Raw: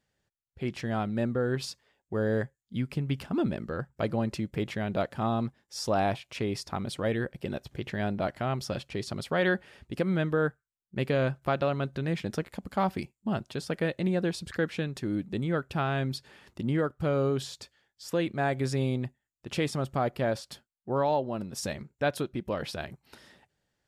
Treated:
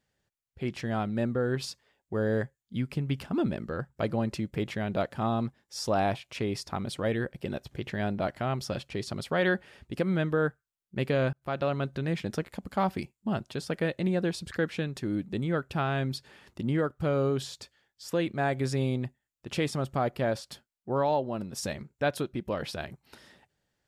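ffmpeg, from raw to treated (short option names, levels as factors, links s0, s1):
-filter_complex "[0:a]asplit=2[s0][s1];[s0]atrim=end=11.33,asetpts=PTS-STARTPTS,afade=t=out:st=11.326:d=0.004:c=hsin[s2];[s1]atrim=start=11.33,asetpts=PTS-STARTPTS,afade=t=in:d=0.47:c=qsin[s3];[s2][s3]concat=n=2:v=0:a=1"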